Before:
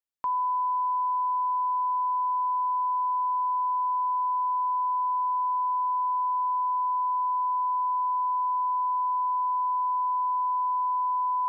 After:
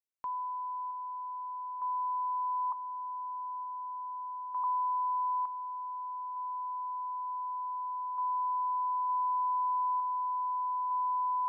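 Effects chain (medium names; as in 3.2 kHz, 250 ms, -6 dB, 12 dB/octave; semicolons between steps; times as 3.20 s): 2.72–4.64 s: low-pass 1 kHz 24 dB/octave; gain riding 0.5 s; random-step tremolo 1.1 Hz, depth 65%; trim -3.5 dB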